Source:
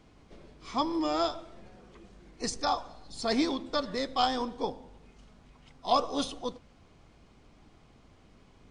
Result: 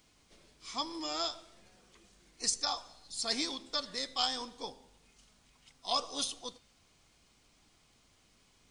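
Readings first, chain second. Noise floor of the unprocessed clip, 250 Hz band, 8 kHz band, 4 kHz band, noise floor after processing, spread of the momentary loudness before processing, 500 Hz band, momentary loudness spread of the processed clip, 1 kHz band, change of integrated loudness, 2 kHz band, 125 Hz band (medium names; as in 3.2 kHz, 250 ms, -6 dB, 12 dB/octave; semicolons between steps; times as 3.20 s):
-59 dBFS, -12.5 dB, +6.0 dB, +2.0 dB, -68 dBFS, 12 LU, -11.0 dB, 13 LU, -9.0 dB, -4.0 dB, -4.5 dB, under -10 dB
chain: pre-emphasis filter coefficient 0.9; de-hum 402.1 Hz, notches 19; trim +7 dB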